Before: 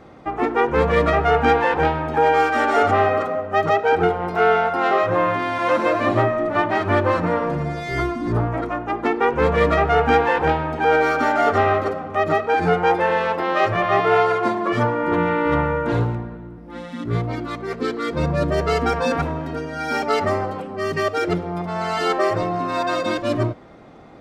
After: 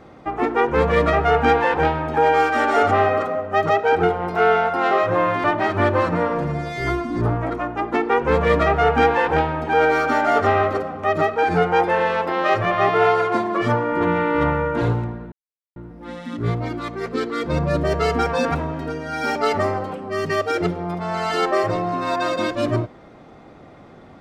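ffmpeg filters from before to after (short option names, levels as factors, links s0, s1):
-filter_complex "[0:a]asplit=3[s0][s1][s2];[s0]atrim=end=5.442[s3];[s1]atrim=start=6.548:end=16.43,asetpts=PTS-STARTPTS,afade=t=out:st=9.878:d=0.004:c=hsin,apad=pad_dur=0.44[s4];[s2]atrim=start=16.43,asetpts=PTS-STARTPTS,afade=t=in:d=0.004:c=hsin[s5];[s4][s5]concat=n=2:v=0:a=1[s6];[s3][s6]acrossfade=d=0.004:c1=hsin:c2=hsin"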